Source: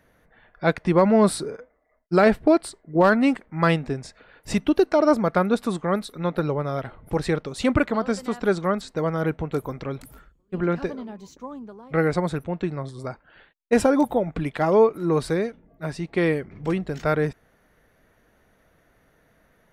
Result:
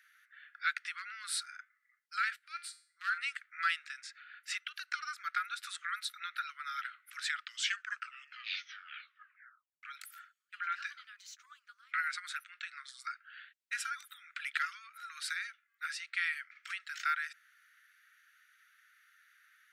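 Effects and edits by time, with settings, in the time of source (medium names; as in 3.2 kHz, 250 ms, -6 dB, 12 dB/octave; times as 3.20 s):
2.36–3.18 s: feedback comb 82 Hz, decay 0.45 s, harmonics odd, mix 70%
4.01–4.74 s: treble shelf 4.4 kHz -9 dB
7.14 s: tape stop 2.69 s
whole clip: treble shelf 8.6 kHz -5.5 dB; compression, threshold -22 dBFS; steep high-pass 1.3 kHz 96 dB/octave; trim +2 dB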